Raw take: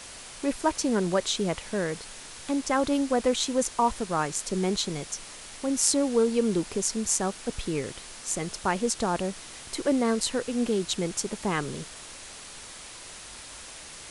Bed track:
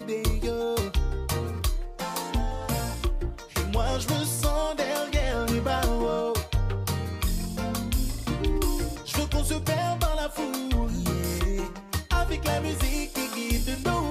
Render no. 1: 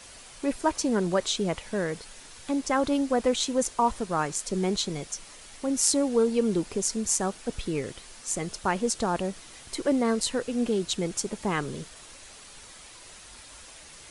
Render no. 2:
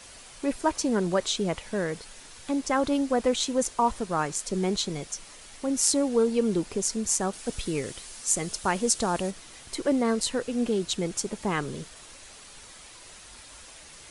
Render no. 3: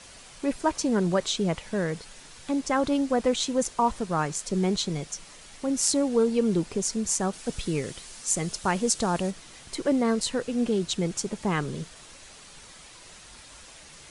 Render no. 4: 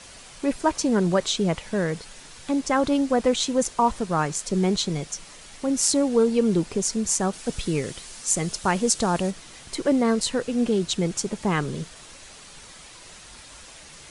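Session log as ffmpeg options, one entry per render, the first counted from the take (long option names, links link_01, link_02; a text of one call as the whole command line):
ffmpeg -i in.wav -af "afftdn=noise_reduction=6:noise_floor=-44" out.wav
ffmpeg -i in.wav -filter_complex "[0:a]asettb=1/sr,asplit=3[link_01][link_02][link_03];[link_01]atrim=end=7.334[link_04];[link_02]atrim=start=7.33:end=9.31,asetpts=PTS-STARTPTS,afade=type=in:duration=0.004:curve=qsin,afade=type=out:start_time=1.976:duration=0.004:curve=qsin,highshelf=frequency=4700:gain=8[link_05];[link_03]atrim=start=9.306[link_06];[link_04][link_05]acrossfade=duration=0.004:curve1=hsin:curve2=qsin[link_07];[link_07][link_06]acrossfade=duration=0.004:curve1=qsin:curve2=hsin" out.wav
ffmpeg -i in.wav -af "lowpass=9800,equalizer=frequency=160:width_type=o:width=0.67:gain=5" out.wav
ffmpeg -i in.wav -af "volume=3dB,alimiter=limit=-3dB:level=0:latency=1" out.wav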